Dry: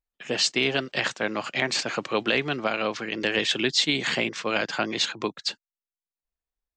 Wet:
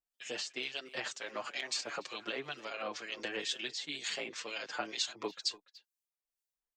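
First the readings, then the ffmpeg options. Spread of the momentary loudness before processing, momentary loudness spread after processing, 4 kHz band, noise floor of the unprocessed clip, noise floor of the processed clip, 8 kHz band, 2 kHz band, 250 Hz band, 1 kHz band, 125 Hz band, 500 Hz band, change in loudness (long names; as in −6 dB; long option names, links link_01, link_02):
7 LU, 5 LU, −12.0 dB, below −85 dBFS, below −85 dBFS, −9.0 dB, −13.5 dB, −18.0 dB, −12.5 dB, −23.0 dB, −14.5 dB, −13.0 dB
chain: -filter_complex "[0:a]bass=frequency=250:gain=-12,treble=frequency=4000:gain=8,acompressor=threshold=-31dB:ratio=3,acrossover=split=2200[link_01][link_02];[link_01]aeval=exprs='val(0)*(1-0.7/2+0.7/2*cos(2*PI*2.1*n/s))':channel_layout=same[link_03];[link_02]aeval=exprs='val(0)*(1-0.7/2-0.7/2*cos(2*PI*2.1*n/s))':channel_layout=same[link_04];[link_03][link_04]amix=inputs=2:normalize=0,asplit=2[link_05][link_06];[link_06]adelay=290,highpass=300,lowpass=3400,asoftclip=type=hard:threshold=-28dB,volume=-16dB[link_07];[link_05][link_07]amix=inputs=2:normalize=0,asplit=2[link_08][link_09];[link_09]adelay=6.4,afreqshift=-2.7[link_10];[link_08][link_10]amix=inputs=2:normalize=1"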